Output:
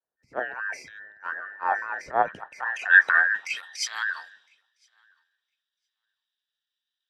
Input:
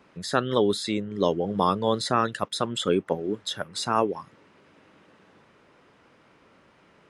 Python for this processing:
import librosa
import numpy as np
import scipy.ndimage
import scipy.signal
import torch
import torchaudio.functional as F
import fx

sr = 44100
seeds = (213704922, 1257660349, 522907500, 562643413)

p1 = fx.band_invert(x, sr, width_hz=2000)
p2 = fx.transient(p1, sr, attack_db=-11, sustain_db=8)
p3 = fx.spec_box(p2, sr, start_s=2.22, length_s=0.2, low_hz=210.0, high_hz=2300.0, gain_db=-11)
p4 = fx.filter_sweep_bandpass(p3, sr, from_hz=510.0, to_hz=3700.0, start_s=2.1, end_s=3.83, q=1.4)
p5 = p4 + fx.echo_feedback(p4, sr, ms=1010, feedback_pct=27, wet_db=-17.5, dry=0)
p6 = fx.band_widen(p5, sr, depth_pct=100)
y = p6 * 10.0 ** (3.5 / 20.0)